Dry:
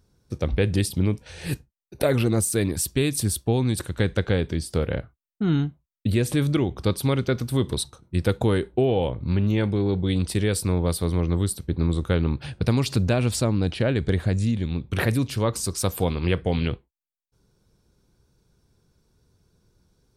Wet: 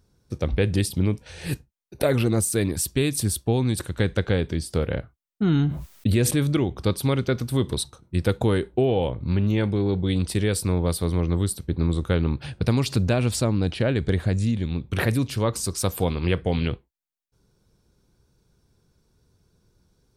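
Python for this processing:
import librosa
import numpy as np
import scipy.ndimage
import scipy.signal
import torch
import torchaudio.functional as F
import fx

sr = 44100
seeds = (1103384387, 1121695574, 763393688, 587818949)

y = fx.env_flatten(x, sr, amount_pct=70, at=(5.42, 6.31))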